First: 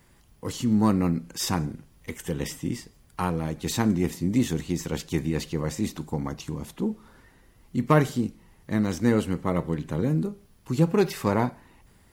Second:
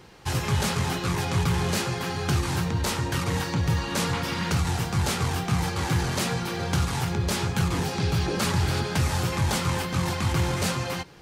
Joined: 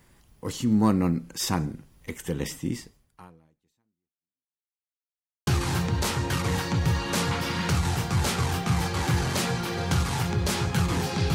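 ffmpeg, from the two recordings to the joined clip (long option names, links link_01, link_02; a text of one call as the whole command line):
ffmpeg -i cue0.wav -i cue1.wav -filter_complex "[0:a]apad=whole_dur=11.34,atrim=end=11.34,asplit=2[link_01][link_02];[link_01]atrim=end=4.68,asetpts=PTS-STARTPTS,afade=type=out:start_time=2.86:duration=1.82:curve=exp[link_03];[link_02]atrim=start=4.68:end=5.47,asetpts=PTS-STARTPTS,volume=0[link_04];[1:a]atrim=start=2.29:end=8.16,asetpts=PTS-STARTPTS,afade=type=in:duration=0.004:curve=hsin[link_05];[link_03][link_04][link_05]concat=n=3:v=0:a=1" out.wav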